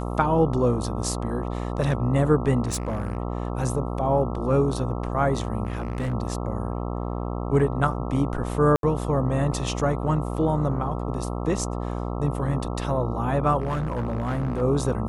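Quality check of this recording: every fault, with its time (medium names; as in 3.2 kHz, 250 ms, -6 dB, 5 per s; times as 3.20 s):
buzz 60 Hz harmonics 22 -29 dBFS
2.64–3.17 s: clipped -22.5 dBFS
5.65–6.14 s: clipped -23 dBFS
8.76–8.83 s: dropout 72 ms
13.60–14.62 s: clipped -22 dBFS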